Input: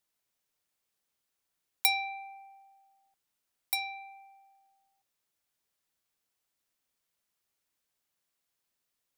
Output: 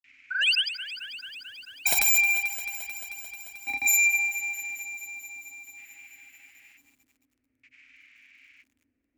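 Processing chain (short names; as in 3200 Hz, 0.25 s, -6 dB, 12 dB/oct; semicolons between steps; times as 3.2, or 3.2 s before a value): low shelf 460 Hz -7 dB; on a send: flutter echo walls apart 5.2 m, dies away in 0.35 s; on the sum: LFO low-pass square 0.52 Hz 450–2400 Hz; painted sound rise, 0.33–0.65, 1400–5100 Hz -47 dBFS; in parallel at -4 dB: one-sided clip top -36.5 dBFS; on the sum: grains 0.1 s, grains 20/s, pitch spread up and down by 0 st; frequency shift +22 Hz; EQ curve 120 Hz 0 dB, 180 Hz -18 dB, 270 Hz +9 dB, 410 Hz -22 dB, 990 Hz -20 dB, 2300 Hz +9 dB, 3500 Hz -6 dB, 7200 Hz +4 dB, 11000 Hz -23 dB; sine folder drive 19 dB, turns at -18 dBFS; lo-fi delay 0.22 s, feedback 80%, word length 9-bit, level -13 dB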